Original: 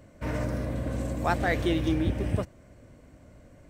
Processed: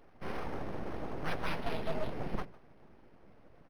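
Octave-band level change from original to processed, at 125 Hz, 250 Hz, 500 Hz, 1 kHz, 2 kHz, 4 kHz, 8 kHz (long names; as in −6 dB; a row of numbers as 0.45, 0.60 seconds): −14.5, −13.0, −8.0, −7.5, −9.0, −7.5, −13.0 decibels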